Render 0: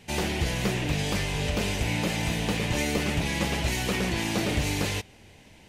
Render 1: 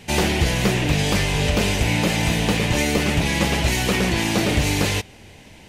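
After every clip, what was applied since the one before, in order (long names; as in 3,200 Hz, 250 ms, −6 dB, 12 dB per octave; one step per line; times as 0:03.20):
speech leveller
level +7.5 dB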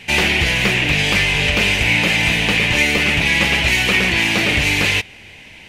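parametric band 2,400 Hz +13.5 dB 1.3 octaves
level −1.5 dB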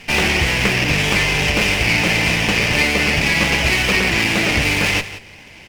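single-tap delay 175 ms −14 dB
windowed peak hold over 5 samples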